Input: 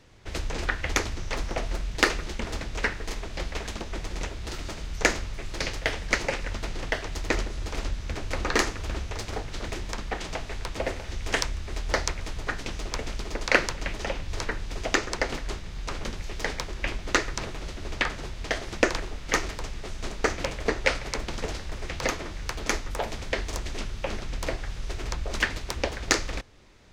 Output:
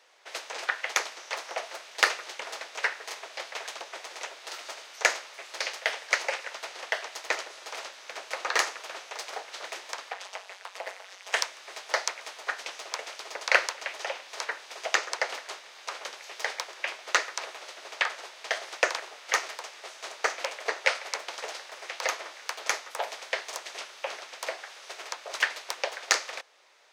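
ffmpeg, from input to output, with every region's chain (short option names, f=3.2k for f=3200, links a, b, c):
-filter_complex "[0:a]asettb=1/sr,asplit=3[a][b][c];[a]atrim=end=10.124[d];[b]atrim=start=10.12:end=11.34,asetpts=PTS-STARTPTS,afade=t=in:d=0.004:c=qsin,afade=t=out:st=1.216:d=0.004:c=qsin,highpass=390,tremolo=f=190:d=0.947,aeval=exprs='clip(val(0),-1,0.0473)':c=same[e];[c]atrim=start=11.336[f];[d][e]acrossfade=d=0.004:c1=hsin:c2=qsin[g];[g][f]acrossfade=d=0.004:c1=qsin:c2=hsin,highpass=f=560:w=0.5412,highpass=f=560:w=1.3066,bandreject=f=7.3k:w=26"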